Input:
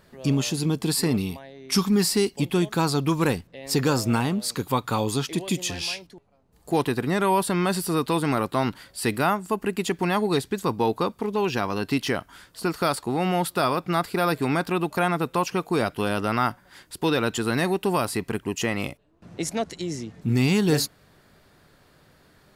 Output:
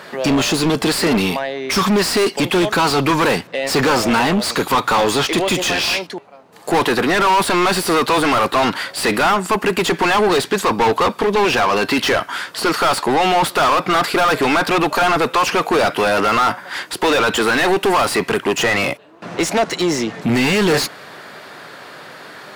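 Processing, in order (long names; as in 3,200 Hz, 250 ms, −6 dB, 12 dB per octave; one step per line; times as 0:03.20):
high-pass filter 100 Hz 24 dB per octave
low-shelf EQ 330 Hz −4 dB
mid-hump overdrive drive 33 dB, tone 2,500 Hz, clips at −6.5 dBFS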